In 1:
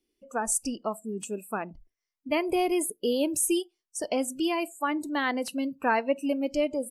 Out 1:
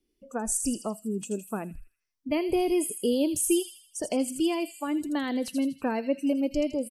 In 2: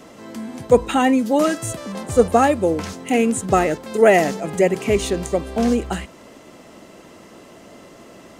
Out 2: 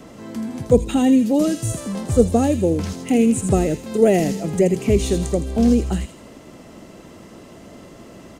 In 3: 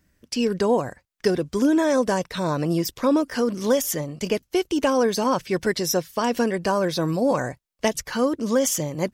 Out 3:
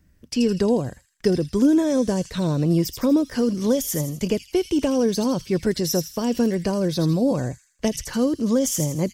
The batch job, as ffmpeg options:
-filter_complex "[0:a]lowshelf=frequency=240:gain=10.5,acrossover=split=610|2900[link_01][link_02][link_03];[link_02]acompressor=threshold=-35dB:ratio=6[link_04];[link_03]aecho=1:1:81|162|243|324|405|486:0.562|0.253|0.114|0.0512|0.0231|0.0104[link_05];[link_01][link_04][link_05]amix=inputs=3:normalize=0,volume=-1.5dB"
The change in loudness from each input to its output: 0.0, 0.0, +1.0 LU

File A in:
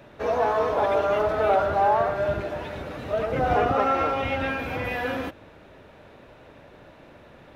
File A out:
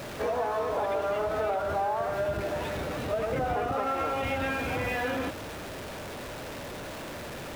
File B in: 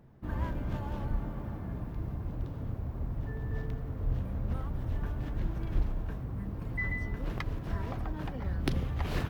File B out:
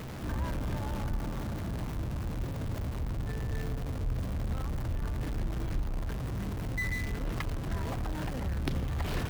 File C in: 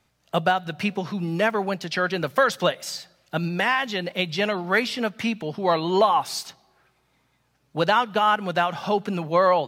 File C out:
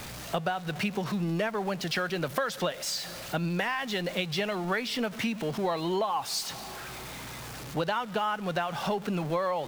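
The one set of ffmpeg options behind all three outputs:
-af "aeval=exprs='val(0)+0.5*0.0224*sgn(val(0))':channel_layout=same,acompressor=threshold=-24dB:ratio=6,volume=-2dB"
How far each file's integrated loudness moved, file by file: −6.5, +1.0, −7.5 LU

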